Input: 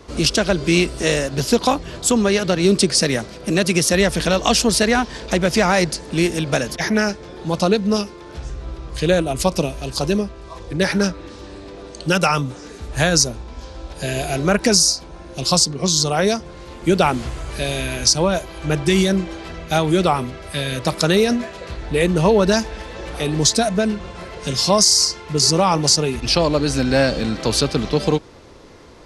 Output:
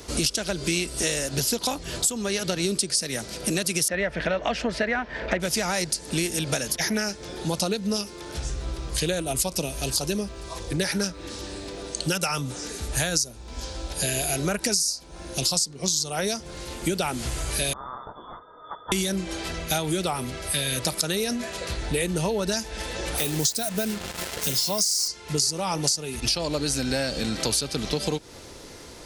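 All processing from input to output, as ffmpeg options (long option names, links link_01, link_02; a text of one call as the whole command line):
ffmpeg -i in.wav -filter_complex "[0:a]asettb=1/sr,asplit=3[link_01][link_02][link_03];[link_01]atrim=end=3.884[link_04];[link_02]atrim=start=3.88:end=5.4,asetpts=PTS-STARTPTS,afade=type=in:duration=0.004:curve=qsin,afade=type=out:start_time=1.516:duration=0.004:curve=qsin,lowpass=frequency=1900:width_type=q:width=2.3,equalizer=frequency=610:width_type=o:width=0.38:gain=8.5[link_05];[link_03]atrim=start=5.396[link_06];[link_04][link_05]acrossfade=duration=0.004:curve1=hsin:curve2=qsin[link_07];[link_07][link_06]acrossfade=duration=0.004:curve1=qsin:curve2=hsin,asettb=1/sr,asplit=3[link_08][link_09][link_10];[link_08]atrim=end=17.734[link_11];[link_09]atrim=start=17.73:end=18.92,asetpts=PTS-STARTPTS,afade=type=in:duration=0.004:curve=qsin,afade=type=out:start_time=1.186:duration=0.004:curve=qsin,aeval=exprs='0.398*(abs(mod(val(0)/0.398+3,4)-2)-1)':channel_layout=same,lowpass=frequency=3100:width_type=q:width=0.5098,lowpass=frequency=3100:width_type=q:width=0.6013,lowpass=frequency=3100:width_type=q:width=0.9,lowpass=frequency=3100:width_type=q:width=2.563,afreqshift=-3600,asuperstop=centerf=2700:order=8:qfactor=0.65[link_12];[link_10]atrim=start=18.916[link_13];[link_11][link_12]acrossfade=duration=0.004:curve1=hsin:curve2=qsin[link_14];[link_14][link_13]acrossfade=duration=0.004:curve1=qsin:curve2=hsin,asettb=1/sr,asplit=3[link_15][link_16][link_17];[link_15]atrim=end=23.184[link_18];[link_16]atrim=start=23.18:end=25.08,asetpts=PTS-STARTPTS,afade=type=in:duration=0.004:curve=qsin,afade=type=out:start_time=1.896:duration=0.004:curve=qsin,highpass=67,acrusher=bits=4:mix=0:aa=0.5[link_19];[link_17]atrim=start=25.076[link_20];[link_18][link_19]acrossfade=duration=0.004:curve1=hsin:curve2=qsin[link_21];[link_21][link_20]acrossfade=duration=0.004:curve1=qsin:curve2=hsin,aemphasis=mode=production:type=75fm,bandreject=frequency=1100:width=11,acompressor=threshold=-23dB:ratio=6" out.wav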